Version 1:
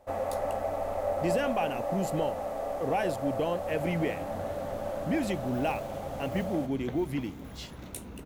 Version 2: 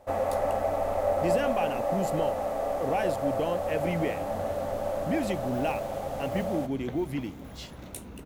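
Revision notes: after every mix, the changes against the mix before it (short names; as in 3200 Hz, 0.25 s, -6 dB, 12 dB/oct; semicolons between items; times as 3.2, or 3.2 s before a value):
first sound +4.0 dB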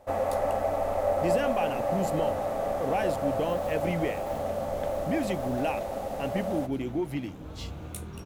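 second sound: entry -2.05 s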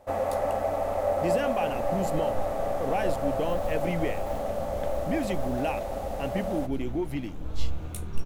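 second sound: remove HPF 89 Hz 12 dB/oct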